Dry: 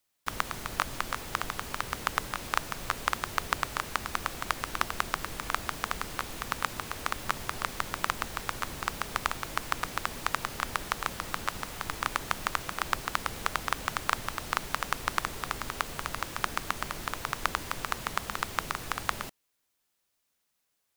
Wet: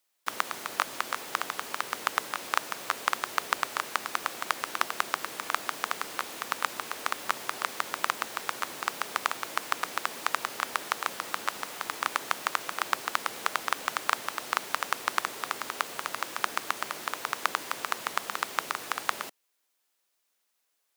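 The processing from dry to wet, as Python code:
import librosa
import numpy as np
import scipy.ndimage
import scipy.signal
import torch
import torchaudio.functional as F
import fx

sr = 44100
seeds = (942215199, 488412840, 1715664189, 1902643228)

y = scipy.signal.sosfilt(scipy.signal.butter(2, 330.0, 'highpass', fs=sr, output='sos'), x)
y = F.gain(torch.from_numpy(y), 1.5).numpy()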